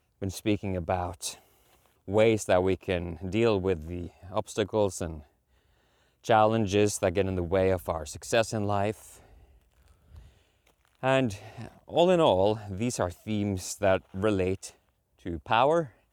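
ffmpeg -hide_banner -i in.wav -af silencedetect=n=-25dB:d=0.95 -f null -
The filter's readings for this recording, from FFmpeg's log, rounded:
silence_start: 5.07
silence_end: 6.29 | silence_duration: 1.22
silence_start: 8.91
silence_end: 11.04 | silence_duration: 2.13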